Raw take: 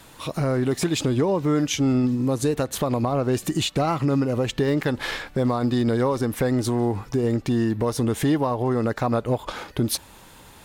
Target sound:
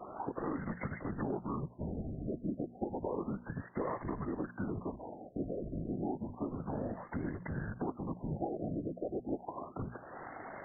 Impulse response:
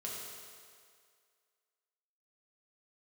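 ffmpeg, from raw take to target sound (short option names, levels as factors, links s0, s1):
-filter_complex "[0:a]afftfilt=real='hypot(re,im)*cos(2*PI*random(0))':imag='hypot(re,im)*sin(2*PI*random(1))':win_size=512:overlap=0.75,asplit=2[s0][s1];[s1]aeval=exprs='clip(val(0),-1,0.0299)':c=same,volume=0.596[s2];[s0][s2]amix=inputs=2:normalize=0,highpass=f=410:t=q:w=0.5412,highpass=f=410:t=q:w=1.307,lowpass=f=3000:t=q:w=0.5176,lowpass=f=3000:t=q:w=0.7071,lowpass=f=3000:t=q:w=1.932,afreqshift=-220,bandreject=f=60:t=h:w=6,bandreject=f=120:t=h:w=6,bandreject=f=180:t=h:w=6,bandreject=f=240:t=h:w=6,tremolo=f=51:d=0.333,acompressor=threshold=0.00316:ratio=3,afftfilt=real='re*lt(b*sr/1024,710*pow(2200/710,0.5+0.5*sin(2*PI*0.31*pts/sr)))':imag='im*lt(b*sr/1024,710*pow(2200/710,0.5+0.5*sin(2*PI*0.31*pts/sr)))':win_size=1024:overlap=0.75,volume=3.16"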